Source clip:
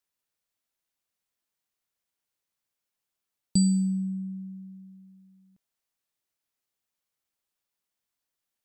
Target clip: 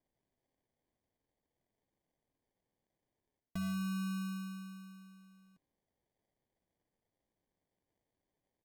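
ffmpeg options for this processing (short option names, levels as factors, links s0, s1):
-af "aecho=1:1:7:0.39,areverse,acompressor=threshold=0.0251:ratio=12,areverse,acrusher=samples=33:mix=1:aa=0.000001,volume=0.708"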